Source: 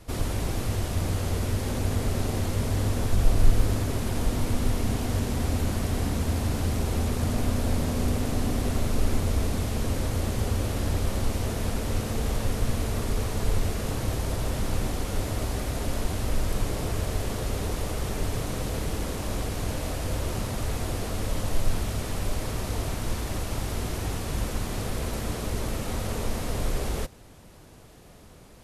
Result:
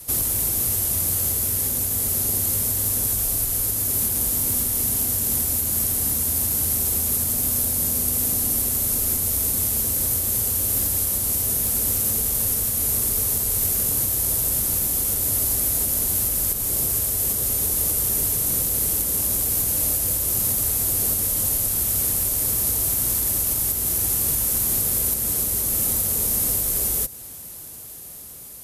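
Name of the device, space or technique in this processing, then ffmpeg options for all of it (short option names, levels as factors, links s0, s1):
FM broadcast chain: -filter_complex "[0:a]highpass=43,dynaudnorm=f=840:g=7:m=1.58,acrossover=split=490|2900|5800[s0][s1][s2][s3];[s0]acompressor=threshold=0.0398:ratio=4[s4];[s1]acompressor=threshold=0.00891:ratio=4[s5];[s2]acompressor=threshold=0.00282:ratio=4[s6];[s3]acompressor=threshold=0.00794:ratio=4[s7];[s4][s5][s6][s7]amix=inputs=4:normalize=0,aemphasis=mode=production:type=50fm,alimiter=limit=0.106:level=0:latency=1:release=320,asoftclip=type=hard:threshold=0.0794,lowpass=f=15000:w=0.5412,lowpass=f=15000:w=1.3066,aemphasis=mode=production:type=50fm"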